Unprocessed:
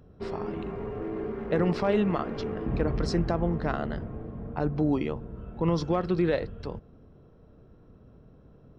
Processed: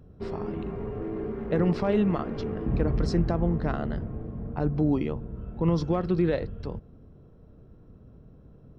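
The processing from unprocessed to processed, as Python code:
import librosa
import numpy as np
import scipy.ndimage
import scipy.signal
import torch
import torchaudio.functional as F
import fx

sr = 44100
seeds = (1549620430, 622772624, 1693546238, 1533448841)

y = fx.low_shelf(x, sr, hz=350.0, db=7.0)
y = F.gain(torch.from_numpy(y), -3.0).numpy()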